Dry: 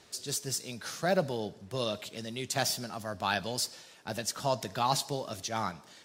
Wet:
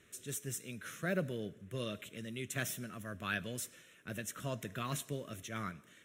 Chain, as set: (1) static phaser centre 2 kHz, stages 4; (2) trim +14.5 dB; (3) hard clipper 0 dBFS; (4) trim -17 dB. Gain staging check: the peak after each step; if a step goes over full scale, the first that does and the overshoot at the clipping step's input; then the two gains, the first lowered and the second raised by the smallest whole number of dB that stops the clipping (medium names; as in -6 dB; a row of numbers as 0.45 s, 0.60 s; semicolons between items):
-18.5 dBFS, -4.0 dBFS, -4.0 dBFS, -21.0 dBFS; nothing clips